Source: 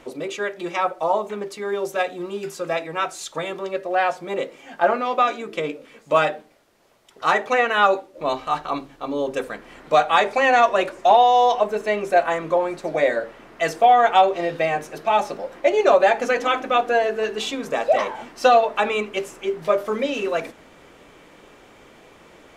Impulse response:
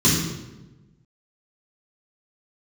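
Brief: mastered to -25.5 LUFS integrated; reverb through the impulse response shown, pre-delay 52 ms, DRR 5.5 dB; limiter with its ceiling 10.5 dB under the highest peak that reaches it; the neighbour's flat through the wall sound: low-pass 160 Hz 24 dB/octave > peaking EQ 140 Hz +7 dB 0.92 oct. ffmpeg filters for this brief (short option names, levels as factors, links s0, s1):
-filter_complex "[0:a]alimiter=limit=0.178:level=0:latency=1,asplit=2[s0][s1];[1:a]atrim=start_sample=2205,adelay=52[s2];[s1][s2]afir=irnorm=-1:irlink=0,volume=0.0668[s3];[s0][s3]amix=inputs=2:normalize=0,lowpass=f=160:w=0.5412,lowpass=f=160:w=1.3066,equalizer=f=140:t=o:w=0.92:g=7,volume=2.51"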